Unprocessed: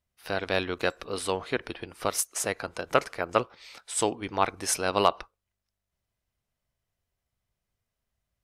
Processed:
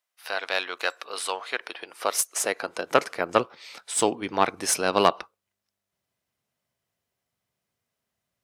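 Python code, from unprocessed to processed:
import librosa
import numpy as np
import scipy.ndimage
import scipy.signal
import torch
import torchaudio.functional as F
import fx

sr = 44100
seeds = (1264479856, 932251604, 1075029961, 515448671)

y = fx.diode_clip(x, sr, knee_db=-12.5)
y = fx.filter_sweep_highpass(y, sr, from_hz=790.0, to_hz=160.0, start_s=1.54, end_s=3.33, q=0.77)
y = y * 10.0 ** (4.0 / 20.0)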